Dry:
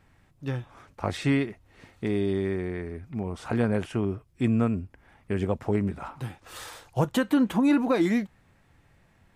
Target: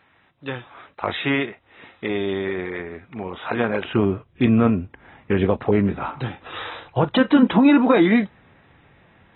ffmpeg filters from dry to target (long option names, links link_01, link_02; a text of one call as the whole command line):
ffmpeg -i in.wav -af "asetnsamples=nb_out_samples=441:pad=0,asendcmd='3.85 highpass f 140',highpass=frequency=730:poles=1,alimiter=level_in=15.5dB:limit=-1dB:release=50:level=0:latency=1,volume=-6dB" -ar 24000 -c:a aac -b:a 16k out.aac